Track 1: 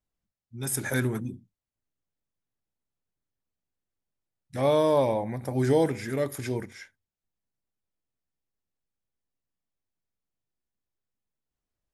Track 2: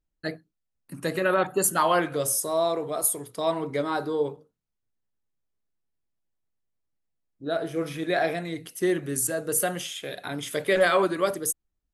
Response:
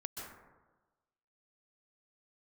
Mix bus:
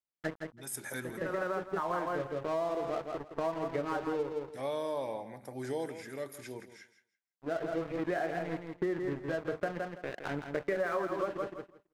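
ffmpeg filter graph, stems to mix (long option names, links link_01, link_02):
-filter_complex "[0:a]highpass=frequency=380:poles=1,volume=-9.5dB,asplit=3[link_01][link_02][link_03];[link_02]volume=-13.5dB[link_04];[1:a]lowpass=frequency=1900:width=0.5412,lowpass=frequency=1900:width=1.3066,aeval=exprs='sgn(val(0))*max(abs(val(0))-0.0119,0)':channel_layout=same,volume=1.5dB,asplit=2[link_05][link_06];[link_06]volume=-8dB[link_07];[link_03]apad=whole_len=526419[link_08];[link_05][link_08]sidechaincompress=threshold=-53dB:ratio=6:attack=37:release=1210[link_09];[link_04][link_07]amix=inputs=2:normalize=0,aecho=0:1:165|330|495:1|0.16|0.0256[link_10];[link_01][link_09][link_10]amix=inputs=3:normalize=0,acompressor=threshold=-30dB:ratio=6"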